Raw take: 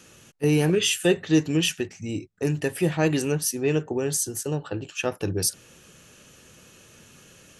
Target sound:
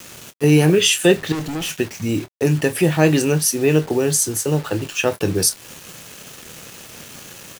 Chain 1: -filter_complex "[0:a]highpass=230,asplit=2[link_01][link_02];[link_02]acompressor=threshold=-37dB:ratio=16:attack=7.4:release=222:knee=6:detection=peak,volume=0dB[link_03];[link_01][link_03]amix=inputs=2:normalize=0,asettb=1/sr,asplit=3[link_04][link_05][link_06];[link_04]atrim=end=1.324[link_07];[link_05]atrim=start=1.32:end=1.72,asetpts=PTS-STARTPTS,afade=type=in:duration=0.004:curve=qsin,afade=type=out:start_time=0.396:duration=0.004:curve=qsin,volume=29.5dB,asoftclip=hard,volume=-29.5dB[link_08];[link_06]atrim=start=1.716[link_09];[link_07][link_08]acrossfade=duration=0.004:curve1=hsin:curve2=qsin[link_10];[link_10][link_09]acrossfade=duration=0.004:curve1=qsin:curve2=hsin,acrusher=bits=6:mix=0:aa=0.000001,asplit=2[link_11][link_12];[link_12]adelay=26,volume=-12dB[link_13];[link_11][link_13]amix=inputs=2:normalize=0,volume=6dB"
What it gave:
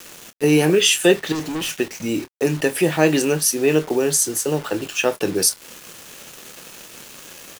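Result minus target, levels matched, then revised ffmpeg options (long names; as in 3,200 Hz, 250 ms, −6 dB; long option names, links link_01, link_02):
125 Hz band −6.5 dB
-filter_complex "[0:a]highpass=74,asplit=2[link_01][link_02];[link_02]acompressor=threshold=-37dB:ratio=16:attack=7.4:release=222:knee=6:detection=peak,volume=0dB[link_03];[link_01][link_03]amix=inputs=2:normalize=0,asettb=1/sr,asplit=3[link_04][link_05][link_06];[link_04]atrim=end=1.324[link_07];[link_05]atrim=start=1.32:end=1.72,asetpts=PTS-STARTPTS,afade=type=in:duration=0.004:curve=qsin,afade=type=out:start_time=0.396:duration=0.004:curve=qsin,volume=29.5dB,asoftclip=hard,volume=-29.5dB[link_08];[link_06]atrim=start=1.716[link_09];[link_07][link_08]acrossfade=duration=0.004:curve1=hsin:curve2=qsin[link_10];[link_10][link_09]acrossfade=duration=0.004:curve1=qsin:curve2=hsin,acrusher=bits=6:mix=0:aa=0.000001,asplit=2[link_11][link_12];[link_12]adelay=26,volume=-12dB[link_13];[link_11][link_13]amix=inputs=2:normalize=0,volume=6dB"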